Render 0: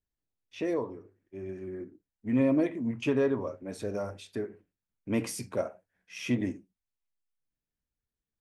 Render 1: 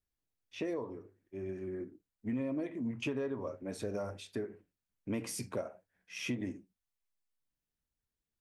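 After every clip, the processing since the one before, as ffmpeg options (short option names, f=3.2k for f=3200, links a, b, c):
-af "acompressor=threshold=-32dB:ratio=6,volume=-1dB"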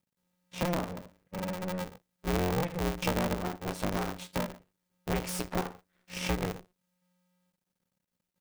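-af "aeval=exprs='max(val(0),0)':c=same,aeval=exprs='val(0)*sgn(sin(2*PI*180*n/s))':c=same,volume=8.5dB"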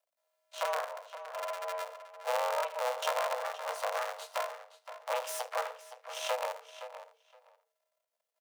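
-filter_complex "[0:a]asplit=2[a][b];[b]adelay=518,lowpass=f=4.9k:p=1,volume=-12dB,asplit=2[c][d];[d]adelay=518,lowpass=f=4.9k:p=1,volume=0.17[e];[a][c][e]amix=inputs=3:normalize=0,afreqshift=450,volume=-2.5dB"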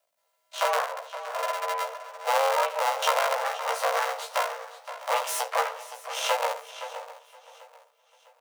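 -filter_complex "[0:a]asplit=2[a][b];[b]adelay=15,volume=-2.5dB[c];[a][c]amix=inputs=2:normalize=0,aecho=1:1:654|1308|1962:0.112|0.0482|0.0207,volume=7dB"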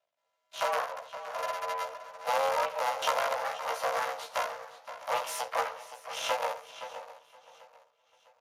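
-af "volume=-4.5dB" -ar 32000 -c:a libspeex -b:a 36k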